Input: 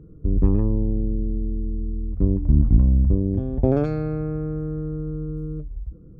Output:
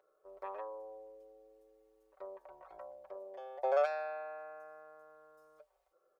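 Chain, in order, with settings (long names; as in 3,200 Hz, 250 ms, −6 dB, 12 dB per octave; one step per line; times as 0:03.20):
elliptic high-pass filter 600 Hz, stop band 60 dB
comb filter 5.3 ms, depth 79%
level −1 dB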